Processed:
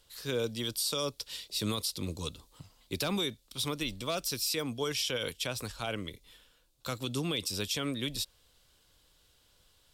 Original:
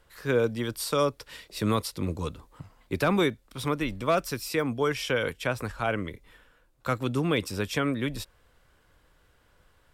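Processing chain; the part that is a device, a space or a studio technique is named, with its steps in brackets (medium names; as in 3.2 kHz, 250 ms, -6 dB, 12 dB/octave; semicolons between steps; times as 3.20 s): over-bright horn tweeter (resonant high shelf 2.6 kHz +11.5 dB, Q 1.5; peak limiter -15.5 dBFS, peak gain reduction 7.5 dB); trim -6.5 dB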